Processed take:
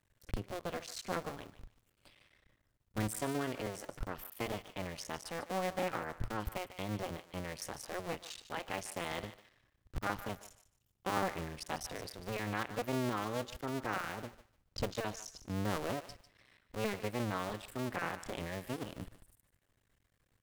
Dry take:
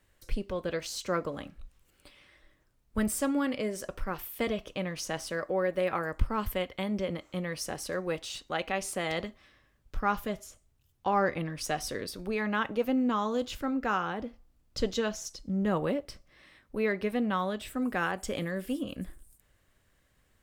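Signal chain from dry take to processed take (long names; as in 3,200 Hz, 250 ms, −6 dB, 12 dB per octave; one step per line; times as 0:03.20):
sub-harmonics by changed cycles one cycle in 2, muted
parametric band 110 Hz +6 dB 0.38 octaves
feedback echo with a high-pass in the loop 148 ms, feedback 23%, high-pass 740 Hz, level −12.5 dB
level −5 dB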